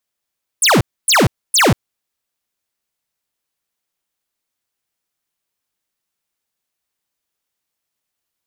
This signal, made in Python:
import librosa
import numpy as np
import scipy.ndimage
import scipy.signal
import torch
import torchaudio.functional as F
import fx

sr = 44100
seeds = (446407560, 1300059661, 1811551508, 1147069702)

y = fx.laser_zaps(sr, level_db=-11, start_hz=11000.0, end_hz=86.0, length_s=0.19, wave='square', shots=3, gap_s=0.27)